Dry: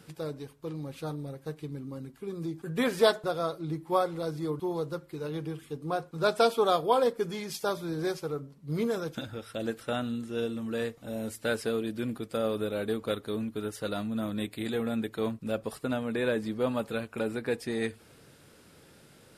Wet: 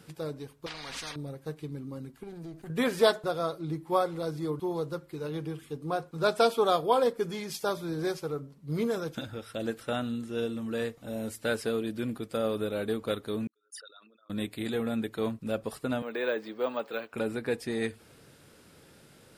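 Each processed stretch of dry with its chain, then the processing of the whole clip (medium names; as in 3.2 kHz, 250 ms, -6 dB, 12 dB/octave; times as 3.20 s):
0.66–1.16 s: low-pass 3.8 kHz + comb 4.2 ms, depth 60% + spectrum-flattening compressor 10:1
2.23–2.70 s: comb filter that takes the minimum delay 0.46 ms + compression 2:1, threshold -44 dBFS
13.47–14.30 s: resonances exaggerated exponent 3 + high-pass 1.5 kHz 24 dB/octave + decay stretcher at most 66 dB/s
16.02–17.13 s: three-band isolator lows -24 dB, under 300 Hz, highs -13 dB, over 5.4 kHz + careless resampling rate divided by 2×, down filtered, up hold
whole clip: none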